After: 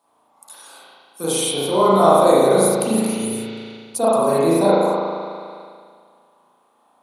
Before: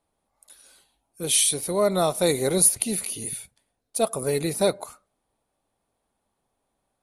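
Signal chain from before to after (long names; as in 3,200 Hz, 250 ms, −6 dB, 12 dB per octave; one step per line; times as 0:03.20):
high-pass filter 190 Hz 12 dB per octave
in parallel at 0 dB: compressor whose output falls as the input rises −23 dBFS
on the sum: octave-band graphic EQ 250/1,000/2,000 Hz +4/+11/−8 dB
spring reverb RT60 1.8 s, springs 36 ms, chirp 60 ms, DRR −9.5 dB
one half of a high-frequency compander encoder only
level −8 dB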